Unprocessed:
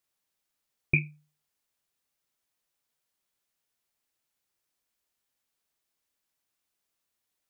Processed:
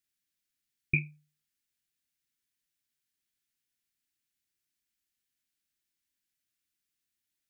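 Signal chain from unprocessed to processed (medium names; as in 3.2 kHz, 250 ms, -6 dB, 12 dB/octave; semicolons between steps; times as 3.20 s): high-order bell 720 Hz -15.5 dB; trim -3 dB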